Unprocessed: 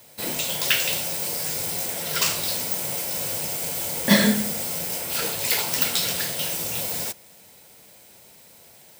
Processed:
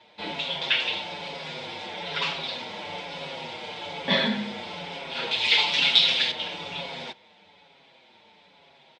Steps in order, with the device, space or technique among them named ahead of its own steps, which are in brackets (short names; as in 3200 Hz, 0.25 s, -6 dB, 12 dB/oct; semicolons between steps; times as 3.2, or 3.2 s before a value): barber-pole flanger into a guitar amplifier (endless flanger 6.1 ms -1.1 Hz; soft clip -16 dBFS, distortion -18 dB; speaker cabinet 110–3800 Hz, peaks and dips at 120 Hz -10 dB, 890 Hz +8 dB, 2300 Hz +4 dB, 3500 Hz +9 dB); 5.31–6.32 band shelf 5500 Hz +10 dB 2.9 oct